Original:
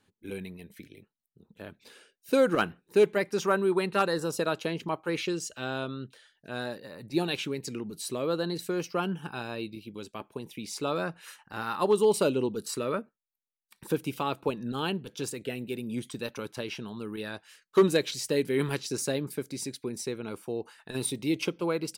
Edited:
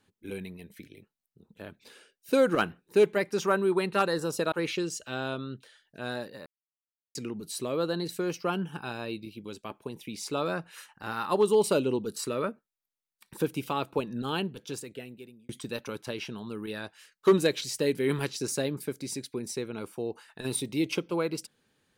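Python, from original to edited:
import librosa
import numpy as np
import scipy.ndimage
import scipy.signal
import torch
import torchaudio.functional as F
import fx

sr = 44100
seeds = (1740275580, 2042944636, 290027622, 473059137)

y = fx.edit(x, sr, fx.cut(start_s=4.52, length_s=0.5),
    fx.silence(start_s=6.96, length_s=0.69),
    fx.fade_out_span(start_s=14.93, length_s=1.06), tone=tone)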